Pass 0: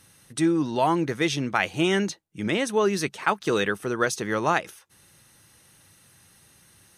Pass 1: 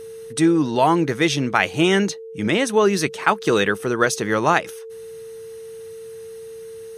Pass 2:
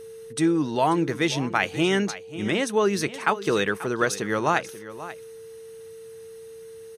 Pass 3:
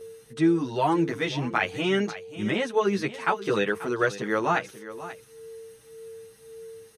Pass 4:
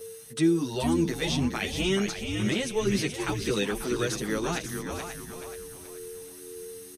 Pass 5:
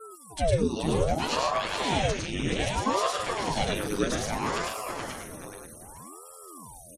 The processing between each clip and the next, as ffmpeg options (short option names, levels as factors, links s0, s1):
-af "aeval=exprs='val(0)+0.0112*sin(2*PI*450*n/s)':c=same,volume=1.88"
-af "aecho=1:1:537:0.178,volume=0.562"
-filter_complex "[0:a]acrossover=split=4300[s0][s1];[s1]acompressor=threshold=0.00501:ratio=4:attack=1:release=60[s2];[s0][s2]amix=inputs=2:normalize=0,asplit=2[s3][s4];[s4]adelay=8.7,afreqshift=1.8[s5];[s3][s5]amix=inputs=2:normalize=1,volume=1.12"
-filter_complex "[0:a]acrossover=split=420|3000[s0][s1][s2];[s1]acompressor=threshold=0.01:ratio=3[s3];[s0][s3][s2]amix=inputs=3:normalize=0,crystalizer=i=2.5:c=0,asplit=6[s4][s5][s6][s7][s8][s9];[s5]adelay=427,afreqshift=-85,volume=0.473[s10];[s6]adelay=854,afreqshift=-170,volume=0.188[s11];[s7]adelay=1281,afreqshift=-255,volume=0.0759[s12];[s8]adelay=1708,afreqshift=-340,volume=0.0302[s13];[s9]adelay=2135,afreqshift=-425,volume=0.0122[s14];[s4][s10][s11][s12][s13][s14]amix=inputs=6:normalize=0"
-af "aecho=1:1:105|145.8:0.891|0.501,afftfilt=real='re*gte(hypot(re,im),0.00708)':imag='im*gte(hypot(re,im),0.00708)':win_size=1024:overlap=0.75,aeval=exprs='val(0)*sin(2*PI*470*n/s+470*0.9/0.63*sin(2*PI*0.63*n/s))':c=same"